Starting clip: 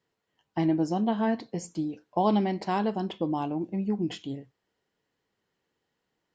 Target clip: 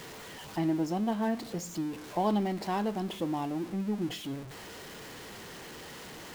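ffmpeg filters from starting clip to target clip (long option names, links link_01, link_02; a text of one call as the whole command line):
ffmpeg -i in.wav -af "aeval=exprs='val(0)+0.5*0.02*sgn(val(0))':channel_layout=same,volume=-5dB" out.wav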